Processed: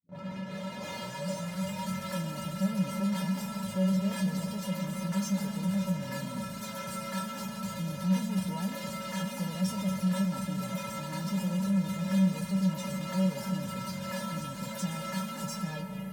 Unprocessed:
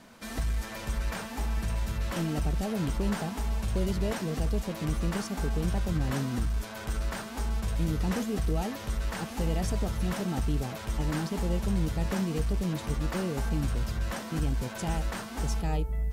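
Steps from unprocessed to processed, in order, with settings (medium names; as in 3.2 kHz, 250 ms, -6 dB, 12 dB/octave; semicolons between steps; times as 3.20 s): tape start-up on the opening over 1.88 s; high-pass 110 Hz 24 dB/octave; in parallel at -11 dB: fuzz box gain 45 dB, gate -50 dBFS; on the sum: feedback comb 190 Hz, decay 0.16 s, harmonics odd, mix 100%; reverberation RT60 2.4 s, pre-delay 95 ms, DRR 9.5 dB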